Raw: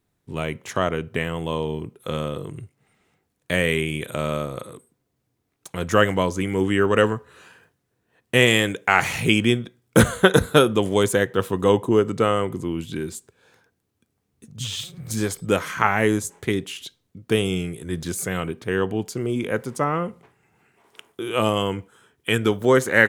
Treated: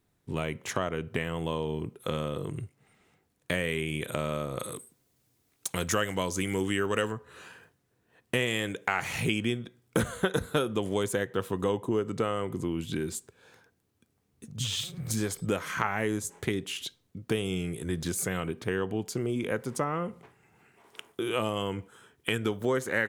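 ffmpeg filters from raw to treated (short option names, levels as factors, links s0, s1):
-filter_complex "[0:a]asettb=1/sr,asplit=3[s0][s1][s2];[s0]atrim=end=4.604[s3];[s1]atrim=start=4.6:end=7.12,asetpts=PTS-STARTPTS,afade=t=in:d=0.004:c=qsin,afade=t=out:st=2.516:d=0.004:c=qsin,highshelf=f=2900:g=11[s4];[s2]atrim=start=7.116[s5];[s3][s4]acrossfade=d=0.004:c1=hsin:c2=qsin[s6];[s6][s5]acrossfade=d=0.004:c1=qsin:c2=hsin,acompressor=threshold=0.0398:ratio=3"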